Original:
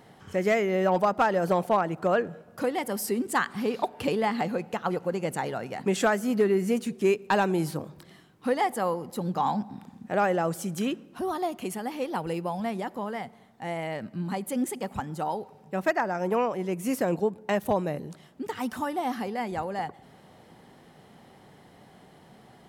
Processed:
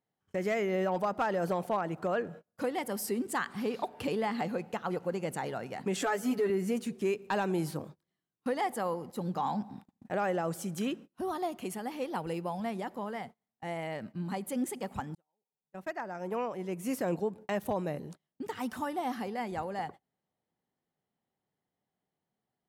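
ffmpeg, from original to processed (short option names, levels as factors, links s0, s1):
-filter_complex "[0:a]asettb=1/sr,asplit=3[s0][s1][s2];[s0]atrim=end=6.014[s3];[s1]atrim=start=6.01:end=6.5,asetpts=PTS-STARTPTS,afade=t=in:d=0.004:c=qsin,afade=t=out:st=0.486:d=0.004:c=qsin,aecho=1:1:7:0.92,atrim=end_sample=21609[s4];[s2]atrim=start=6.496[s5];[s3][s4]acrossfade=d=0.004:c1=hsin:c2=qsin[s6];[s6][s5]acrossfade=d=0.004:c1=qsin:c2=hsin,asplit=2[s7][s8];[s7]atrim=end=15.15,asetpts=PTS-STARTPTS,afade=t=out:st=15.146:d=0.004:c=hsin[s9];[s8]atrim=start=15.15,asetpts=PTS-STARTPTS,afade=t=in:d=1.93[s10];[s9][s10]concat=n=2:v=0:a=1,agate=range=0.0316:threshold=0.00891:ratio=16:detection=peak,alimiter=limit=0.126:level=0:latency=1:release=46,volume=0.596"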